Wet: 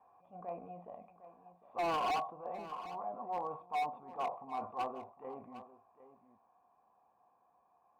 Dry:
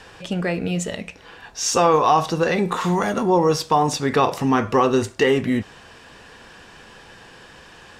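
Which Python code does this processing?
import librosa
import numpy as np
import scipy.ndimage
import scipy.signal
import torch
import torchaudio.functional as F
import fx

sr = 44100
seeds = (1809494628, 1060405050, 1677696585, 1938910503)

y = np.where(x < 0.0, 10.0 ** (-3.0 / 20.0) * x, x)
y = fx.rider(y, sr, range_db=4, speed_s=2.0)
y = fx.dynamic_eq(y, sr, hz=550.0, q=2.3, threshold_db=-32.0, ratio=4.0, max_db=6)
y = fx.cheby_harmonics(y, sr, harmonics=(3,), levels_db=(-12,), full_scale_db=-0.5)
y = scipy.signal.sosfilt(scipy.signal.butter(2, 56.0, 'highpass', fs=sr, output='sos'), y)
y = fx.transient(y, sr, attack_db=-11, sustain_db=2)
y = fx.formant_cascade(y, sr, vowel='a')
y = np.clip(y, -10.0 ** (-34.0 / 20.0), 10.0 ** (-34.0 / 20.0))
y = fx.peak_eq(y, sr, hz=240.0, db=6.5, octaves=0.83)
y = y + 10.0 ** (-14.5 / 20.0) * np.pad(y, (int(755 * sr / 1000.0), 0))[:len(y)]
y = fx.sustainer(y, sr, db_per_s=140.0)
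y = y * librosa.db_to_amplitude(2.5)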